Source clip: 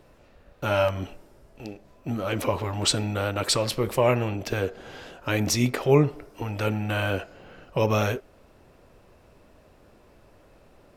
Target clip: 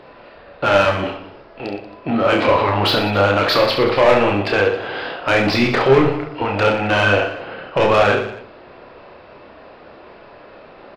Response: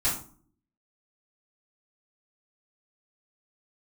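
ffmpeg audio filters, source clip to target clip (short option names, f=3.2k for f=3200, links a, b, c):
-filter_complex "[0:a]aresample=11025,aresample=44100,asplit=2[a][b];[b]highpass=f=720:p=1,volume=24dB,asoftclip=type=tanh:threshold=-5.5dB[c];[a][c]amix=inputs=2:normalize=0,lowpass=f=2.1k:p=1,volume=-6dB,aecho=1:1:30|69|119.7|185.6|271.3:0.631|0.398|0.251|0.158|0.1,asplit=2[d][e];[1:a]atrim=start_sample=2205,adelay=36[f];[e][f]afir=irnorm=-1:irlink=0,volume=-24.5dB[g];[d][g]amix=inputs=2:normalize=0"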